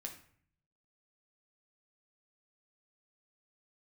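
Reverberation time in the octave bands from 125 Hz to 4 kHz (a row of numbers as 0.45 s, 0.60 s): 1.0 s, 0.75 s, 0.55 s, 0.55 s, 0.55 s, 0.40 s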